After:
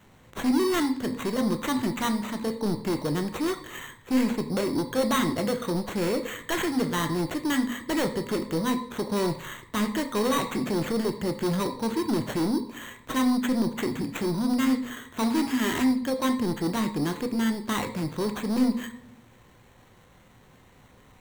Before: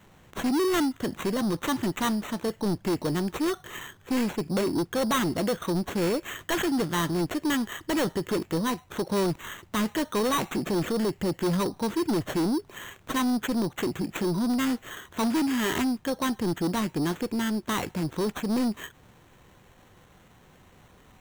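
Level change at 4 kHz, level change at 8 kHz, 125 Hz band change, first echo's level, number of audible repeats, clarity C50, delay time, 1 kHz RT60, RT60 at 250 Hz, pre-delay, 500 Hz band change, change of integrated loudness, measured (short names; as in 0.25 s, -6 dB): 0.0 dB, -0.5 dB, -0.5 dB, none, none, 10.5 dB, none, 0.60 s, 1.0 s, 19 ms, 0.0 dB, +0.5 dB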